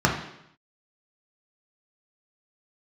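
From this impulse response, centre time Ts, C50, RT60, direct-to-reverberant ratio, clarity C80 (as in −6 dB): 29 ms, 6.0 dB, 0.80 s, −2.0 dB, 9.0 dB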